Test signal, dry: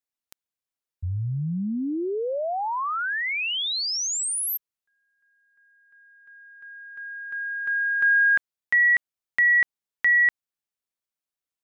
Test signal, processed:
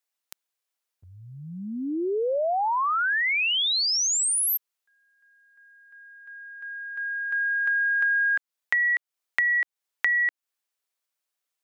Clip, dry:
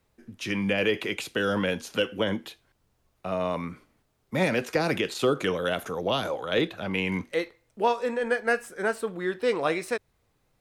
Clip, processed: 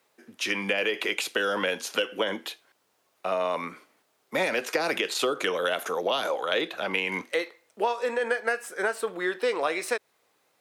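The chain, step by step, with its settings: high-pass 360 Hz 12 dB/octave; bass shelf 460 Hz -4 dB; compression 6:1, threshold -29 dBFS; trim +6.5 dB

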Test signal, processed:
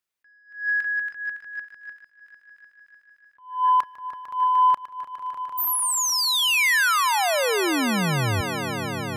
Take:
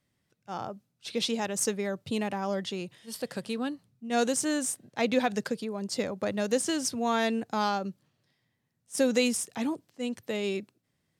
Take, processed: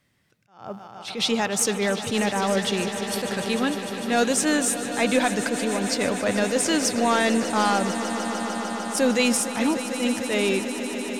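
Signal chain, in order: peaking EQ 1.9 kHz +5 dB 1.7 oct; in parallel at +2.5 dB: peak limiter -20 dBFS; on the sum: saturation -9 dBFS; echo with a slow build-up 150 ms, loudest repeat 5, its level -14 dB; attacks held to a fixed rise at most 140 dB/s

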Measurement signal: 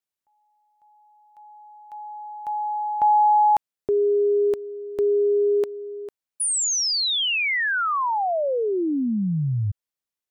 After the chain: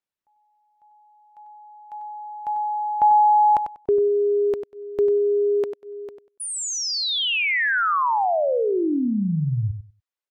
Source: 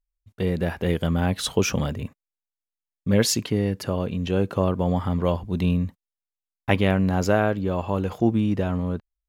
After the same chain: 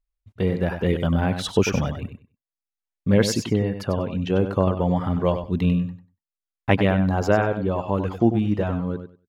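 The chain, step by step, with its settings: reverb removal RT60 0.7 s; treble shelf 5.2 kHz -12 dB; on a send: feedback delay 96 ms, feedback 18%, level -9 dB; on the sum: trim +2.5 dB

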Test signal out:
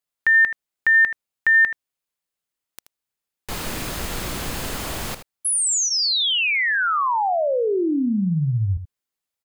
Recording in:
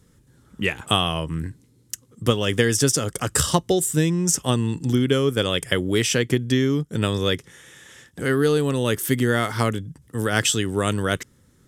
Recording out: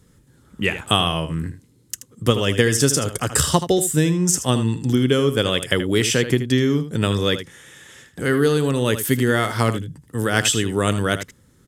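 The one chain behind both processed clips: band-stop 5.7 kHz, Q 24; on a send: delay 79 ms -11.5 dB; on the sum: trim +2 dB

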